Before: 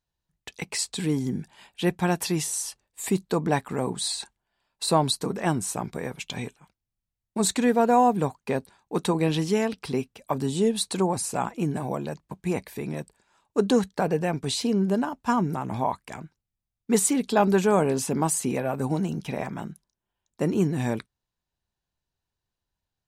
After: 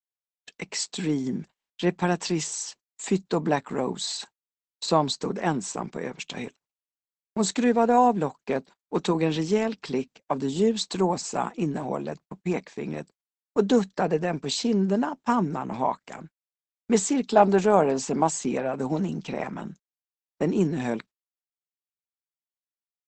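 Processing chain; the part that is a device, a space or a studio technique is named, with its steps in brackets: 16.98–18.29 s: dynamic bell 730 Hz, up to +7 dB, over -35 dBFS, Q 1.5; video call (high-pass 160 Hz 24 dB/octave; level rider gain up to 3 dB; gate -40 dBFS, range -42 dB; trim -2 dB; Opus 12 kbps 48 kHz)

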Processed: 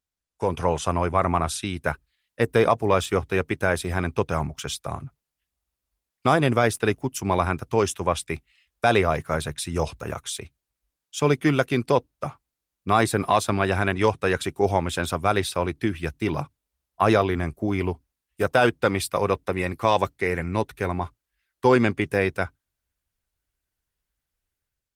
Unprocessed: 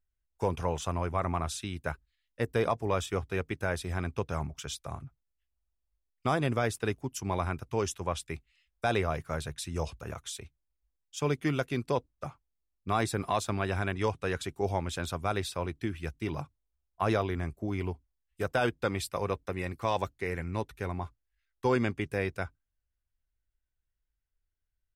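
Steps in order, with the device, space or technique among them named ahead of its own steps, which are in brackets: video call (high-pass 120 Hz 6 dB/octave; level rider gain up to 10 dB; Opus 32 kbps 48 kHz)

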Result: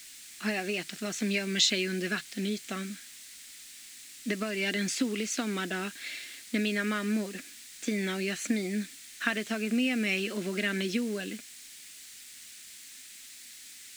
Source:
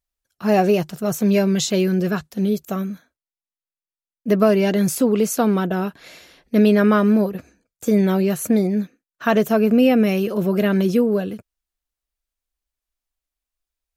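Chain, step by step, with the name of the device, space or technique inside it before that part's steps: baby monitor (band-pass 330–3800 Hz; compression, threshold -22 dBFS, peak gain reduction 10 dB; white noise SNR 23 dB); graphic EQ 125/250/500/1000/2000/4000/8000 Hz -6/+8/-9/-9/+11/+7/+12 dB; trim -4.5 dB

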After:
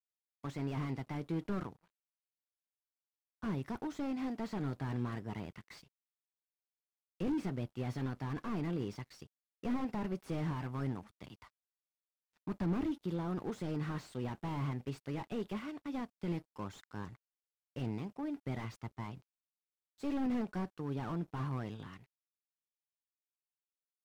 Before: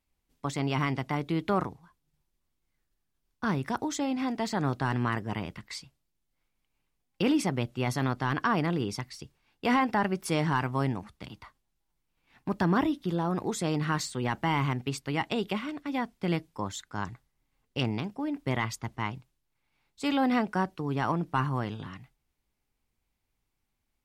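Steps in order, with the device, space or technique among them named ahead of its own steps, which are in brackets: early transistor amplifier (crossover distortion -55.5 dBFS; slew-rate limiter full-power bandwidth 18 Hz); trim -6.5 dB

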